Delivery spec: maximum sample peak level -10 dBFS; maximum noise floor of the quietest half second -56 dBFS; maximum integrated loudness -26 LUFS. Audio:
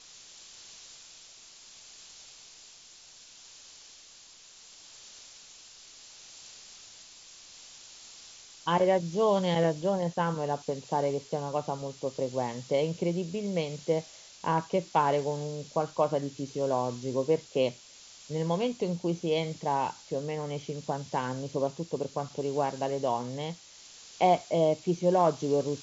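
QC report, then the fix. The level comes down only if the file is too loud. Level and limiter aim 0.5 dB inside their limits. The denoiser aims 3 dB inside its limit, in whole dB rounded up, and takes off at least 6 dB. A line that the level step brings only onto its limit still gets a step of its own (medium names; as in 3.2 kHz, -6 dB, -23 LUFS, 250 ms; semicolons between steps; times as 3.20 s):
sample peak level -11.0 dBFS: pass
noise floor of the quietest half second -53 dBFS: fail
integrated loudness -30.0 LUFS: pass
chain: noise reduction 6 dB, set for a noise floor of -53 dBFS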